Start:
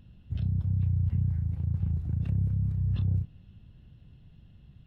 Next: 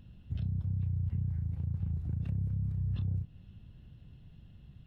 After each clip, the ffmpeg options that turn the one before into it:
ffmpeg -i in.wav -af "acompressor=threshold=-34dB:ratio=2" out.wav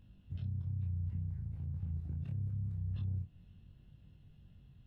ffmpeg -i in.wav -af "flanger=delay=20:depth=3:speed=0.73,volume=-3dB" out.wav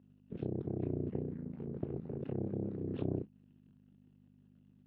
ffmpeg -i in.wav -af "aeval=exprs='0.0376*(cos(1*acos(clip(val(0)/0.0376,-1,1)))-cos(1*PI/2))+0.0119*(cos(3*acos(clip(val(0)/0.0376,-1,1)))-cos(3*PI/2))+0.00422*(cos(6*acos(clip(val(0)/0.0376,-1,1)))-cos(6*PI/2))':channel_layout=same,aeval=exprs='val(0)+0.000708*(sin(2*PI*50*n/s)+sin(2*PI*2*50*n/s)/2+sin(2*PI*3*50*n/s)/3+sin(2*PI*4*50*n/s)/4+sin(2*PI*5*50*n/s)/5)':channel_layout=same,highpass=190,lowpass=2400,volume=11dB" out.wav

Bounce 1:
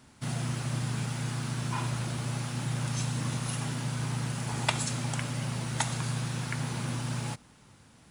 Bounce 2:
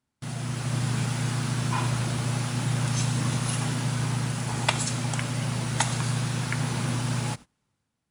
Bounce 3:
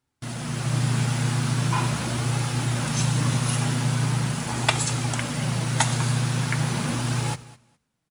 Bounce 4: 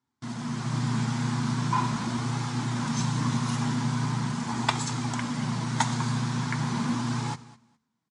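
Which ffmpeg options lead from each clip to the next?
ffmpeg -i in.wav -af "agate=range=-23dB:threshold=-45dB:ratio=16:detection=peak,dynaudnorm=framelen=170:gausssize=7:maxgain=7dB,volume=-1.5dB" out.wav
ffmpeg -i in.wav -af "aecho=1:1:206|412:0.112|0.0191,flanger=delay=2.3:depth=6.2:regen=-48:speed=0.41:shape=sinusoidal,volume=7dB" out.wav
ffmpeg -i in.wav -af "highpass=100,equalizer=frequency=230:width_type=q:width=4:gain=9,equalizer=frequency=550:width_type=q:width=4:gain=-9,equalizer=frequency=1000:width_type=q:width=4:gain=8,equalizer=frequency=2700:width_type=q:width=4:gain=-6,lowpass=frequency=7500:width=0.5412,lowpass=frequency=7500:width=1.3066,volume=-4.5dB" out.wav

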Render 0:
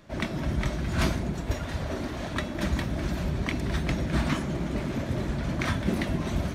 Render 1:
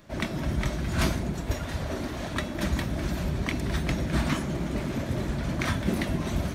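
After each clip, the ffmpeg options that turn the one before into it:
ffmpeg -i in.wav -af "highshelf=frequency=8500:gain=7" out.wav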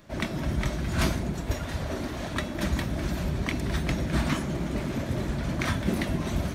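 ffmpeg -i in.wav -af anull out.wav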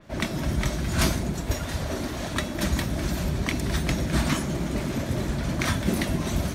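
ffmpeg -i in.wav -af "adynamicequalizer=threshold=0.00447:dfrequency=4100:dqfactor=0.7:tfrequency=4100:tqfactor=0.7:attack=5:release=100:ratio=0.375:range=3:mode=boostabove:tftype=highshelf,volume=2dB" out.wav

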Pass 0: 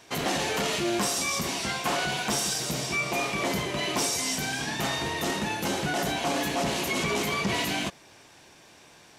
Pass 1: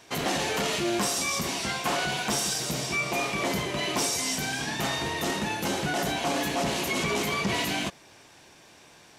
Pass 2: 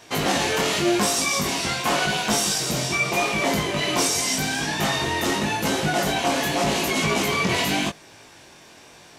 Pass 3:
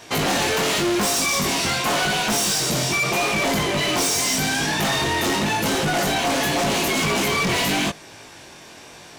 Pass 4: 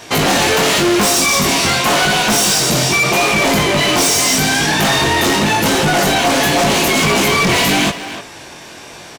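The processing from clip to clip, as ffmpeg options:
ffmpeg -i in.wav -af anull out.wav
ffmpeg -i in.wav -af "flanger=delay=18.5:depth=4:speed=0.87,volume=8.5dB" out.wav
ffmpeg -i in.wav -af "volume=23.5dB,asoftclip=hard,volume=-23.5dB,volume=5dB" out.wav
ffmpeg -i in.wav -filter_complex "[0:a]asplit=2[link_01][link_02];[link_02]adelay=290,highpass=300,lowpass=3400,asoftclip=type=hard:threshold=-26.5dB,volume=-6dB[link_03];[link_01][link_03]amix=inputs=2:normalize=0,volume=7.5dB" out.wav

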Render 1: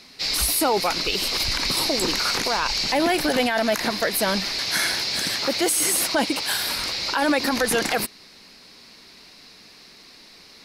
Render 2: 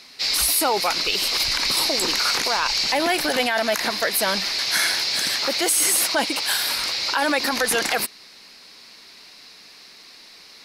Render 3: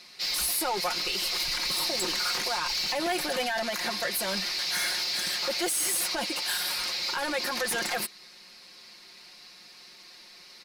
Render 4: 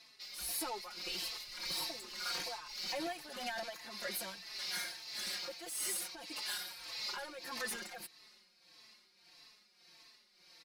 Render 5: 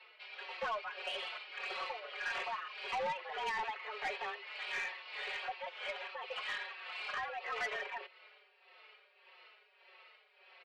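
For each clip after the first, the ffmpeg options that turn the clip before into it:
ffmpeg -i in.wav -af "lowshelf=frequency=390:gain=-10.5,volume=2.5dB" out.wav
ffmpeg -i in.wav -af "asoftclip=type=tanh:threshold=-19.5dB,aecho=1:1:5.6:0.65,volume=-6dB" out.wav
ffmpeg -i in.wav -filter_complex "[0:a]tremolo=f=1.7:d=0.7,asplit=2[link_01][link_02];[link_02]adelay=4,afreqshift=-1.6[link_03];[link_01][link_03]amix=inputs=2:normalize=1,volume=-6.5dB" out.wav
ffmpeg -i in.wav -af "highpass=frequency=170:width_type=q:width=0.5412,highpass=frequency=170:width_type=q:width=1.307,lowpass=frequency=2900:width_type=q:width=0.5176,lowpass=frequency=2900:width_type=q:width=0.7071,lowpass=frequency=2900:width_type=q:width=1.932,afreqshift=210,aeval=exprs='(tanh(89.1*val(0)+0.05)-tanh(0.05))/89.1':channel_layout=same,volume=7.5dB" out.wav

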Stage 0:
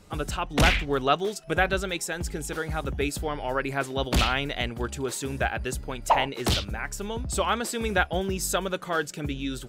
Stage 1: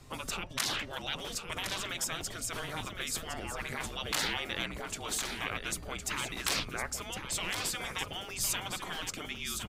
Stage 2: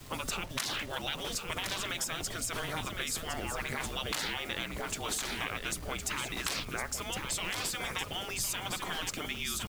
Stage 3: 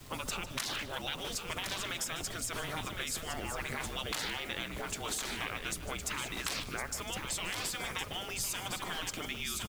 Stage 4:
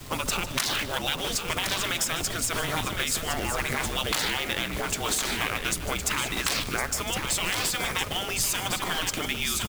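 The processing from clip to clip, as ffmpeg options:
ffmpeg -i in.wav -af "afftfilt=real='re*lt(hypot(re,im),0.0891)':imag='im*lt(hypot(re,im),0.0891)':win_size=1024:overlap=0.75,aecho=1:1:1060:0.398,afreqshift=-170" out.wav
ffmpeg -i in.wav -af "acompressor=threshold=-35dB:ratio=6,acrusher=bits=8:mix=0:aa=0.000001,volume=4dB" out.wav
ffmpeg -i in.wav -af "aecho=1:1:151:0.188,volume=-2dB" out.wav
ffmpeg -i in.wav -af "acrusher=bits=2:mode=log:mix=0:aa=0.000001,volume=9dB" out.wav

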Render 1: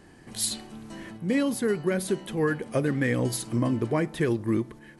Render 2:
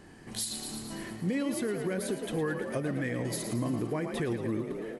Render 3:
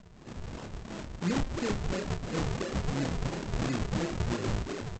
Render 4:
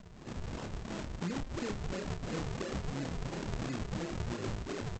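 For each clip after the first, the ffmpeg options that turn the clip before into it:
ffmpeg -i in.wav -filter_complex "[0:a]asplit=2[link_01][link_02];[link_02]asplit=8[link_03][link_04][link_05][link_06][link_07][link_08][link_09][link_10];[link_03]adelay=112,afreqshift=39,volume=-9.5dB[link_11];[link_04]adelay=224,afreqshift=78,volume=-13.5dB[link_12];[link_05]adelay=336,afreqshift=117,volume=-17.5dB[link_13];[link_06]adelay=448,afreqshift=156,volume=-21.5dB[link_14];[link_07]adelay=560,afreqshift=195,volume=-25.6dB[link_15];[link_08]adelay=672,afreqshift=234,volume=-29.6dB[link_16];[link_09]adelay=784,afreqshift=273,volume=-33.6dB[link_17];[link_10]adelay=896,afreqshift=312,volume=-37.6dB[link_18];[link_11][link_12][link_13][link_14][link_15][link_16][link_17][link_18]amix=inputs=8:normalize=0[link_19];[link_01][link_19]amix=inputs=2:normalize=0,alimiter=limit=-23dB:level=0:latency=1:release=261" out.wav
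ffmpeg -i in.wav -filter_complex "[0:a]aresample=16000,acrusher=samples=34:mix=1:aa=0.000001:lfo=1:lforange=54.4:lforate=2.9,aresample=44100,asplit=2[link_01][link_02];[link_02]adelay=29,volume=-7.5dB[link_03];[link_01][link_03]amix=inputs=2:normalize=0" out.wav
ffmpeg -i in.wav -af "acompressor=threshold=-35dB:ratio=6,volume=1dB" out.wav

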